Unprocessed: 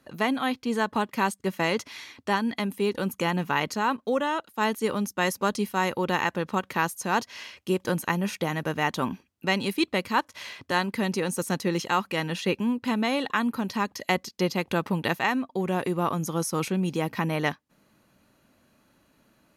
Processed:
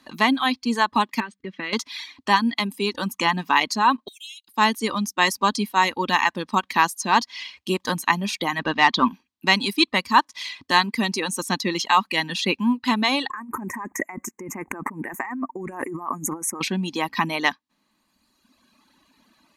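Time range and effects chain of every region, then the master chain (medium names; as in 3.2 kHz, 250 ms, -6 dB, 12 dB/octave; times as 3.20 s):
1.20–1.73 s: low-pass 2.6 kHz + high-order bell 840 Hz -9.5 dB 1 oct + compression 12:1, threshold -28 dBFS
4.08–4.48 s: brick-wall FIR high-pass 2.1 kHz + differentiator
8.59–9.08 s: low-pass 5 kHz 24 dB/octave + waveshaping leveller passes 1
13.30–16.61 s: elliptic band-stop 2.1–7 kHz, stop band 50 dB + compressor with a negative ratio -35 dBFS + peaking EQ 350 Hz +7.5 dB 0.4 oct
whole clip: band-stop 1.4 kHz, Q 6.6; reverb removal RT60 1.5 s; graphic EQ 125/250/500/1000/2000/4000/8000 Hz -8/+9/-6/+10/+4/+11/+4 dB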